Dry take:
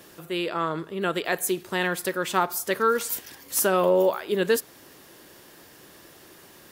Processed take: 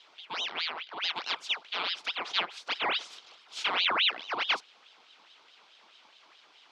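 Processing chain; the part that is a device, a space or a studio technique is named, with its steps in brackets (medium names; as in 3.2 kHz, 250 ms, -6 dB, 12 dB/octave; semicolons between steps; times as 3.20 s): voice changer toy (ring modulator with a swept carrier 2 kHz, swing 75%, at 4.7 Hz; cabinet simulation 470–5000 Hz, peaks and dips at 550 Hz -3 dB, 1.8 kHz -6 dB, 3.3 kHz +4 dB); trim -3.5 dB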